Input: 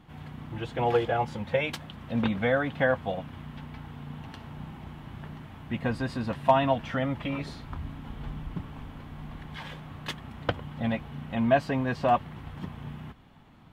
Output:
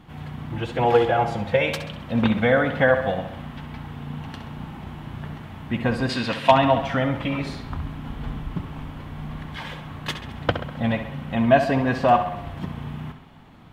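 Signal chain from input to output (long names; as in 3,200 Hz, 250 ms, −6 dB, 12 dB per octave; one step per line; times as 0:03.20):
0:06.09–0:06.52: meter weighting curve D
tape delay 66 ms, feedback 60%, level −8.5 dB, low-pass 6,000 Hz
level +6 dB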